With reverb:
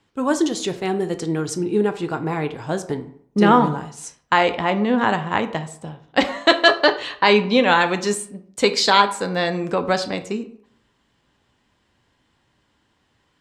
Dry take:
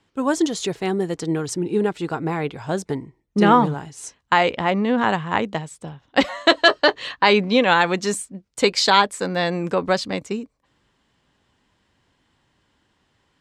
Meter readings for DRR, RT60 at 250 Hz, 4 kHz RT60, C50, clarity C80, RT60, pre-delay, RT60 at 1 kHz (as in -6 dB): 8.5 dB, 0.60 s, 0.40 s, 14.0 dB, 17.5 dB, 0.60 s, 9 ms, 0.65 s